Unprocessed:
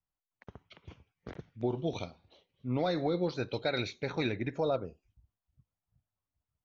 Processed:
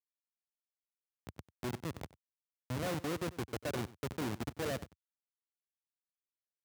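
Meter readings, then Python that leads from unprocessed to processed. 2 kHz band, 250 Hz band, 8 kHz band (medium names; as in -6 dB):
-4.5 dB, -5.5 dB, no reading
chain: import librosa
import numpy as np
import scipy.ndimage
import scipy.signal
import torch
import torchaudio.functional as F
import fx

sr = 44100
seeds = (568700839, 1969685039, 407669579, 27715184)

y = fx.schmitt(x, sr, flips_db=-30.5)
y = scipy.signal.sosfilt(scipy.signal.butter(4, 83.0, 'highpass', fs=sr, output='sos'), y)
y = y + 10.0 ** (-19.0 / 20.0) * np.pad(y, (int(94 * sr / 1000.0), 0))[:len(y)]
y = y * 10.0 ** (1.5 / 20.0)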